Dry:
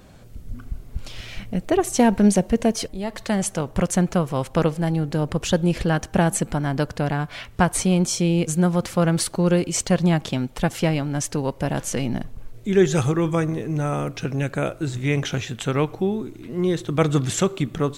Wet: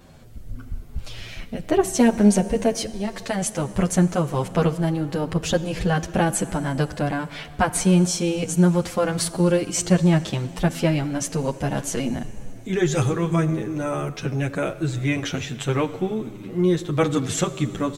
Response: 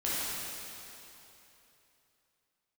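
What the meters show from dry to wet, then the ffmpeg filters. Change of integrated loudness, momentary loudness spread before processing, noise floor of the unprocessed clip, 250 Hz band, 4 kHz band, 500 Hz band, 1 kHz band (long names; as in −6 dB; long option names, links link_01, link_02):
0.0 dB, 11 LU, −45 dBFS, 0.0 dB, −0.5 dB, −0.5 dB, −0.5 dB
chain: -filter_complex "[0:a]asplit=2[link_01][link_02];[1:a]atrim=start_sample=2205[link_03];[link_02][link_03]afir=irnorm=-1:irlink=0,volume=-22dB[link_04];[link_01][link_04]amix=inputs=2:normalize=0,asplit=2[link_05][link_06];[link_06]adelay=8.6,afreqshift=-1.5[link_07];[link_05][link_07]amix=inputs=2:normalize=1,volume=2dB"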